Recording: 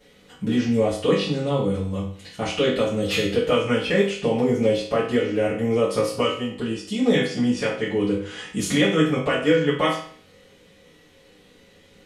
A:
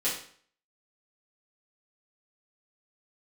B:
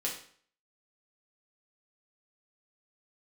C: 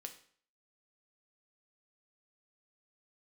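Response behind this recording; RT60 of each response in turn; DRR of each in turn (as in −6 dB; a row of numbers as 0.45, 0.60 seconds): A; 0.50, 0.50, 0.50 seconds; −10.0, −4.0, 5.0 decibels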